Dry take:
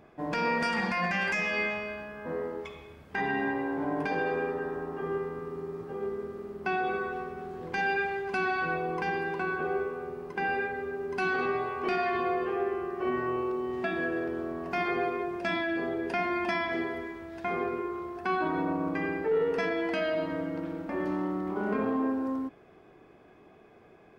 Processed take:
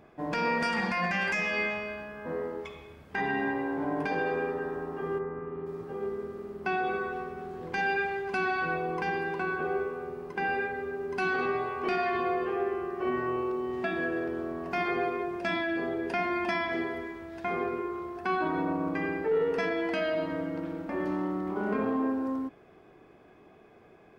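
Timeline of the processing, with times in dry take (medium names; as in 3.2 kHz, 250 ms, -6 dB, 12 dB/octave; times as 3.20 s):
5.18–5.65 s: low-pass 1.8 kHz -> 3.2 kHz 24 dB/octave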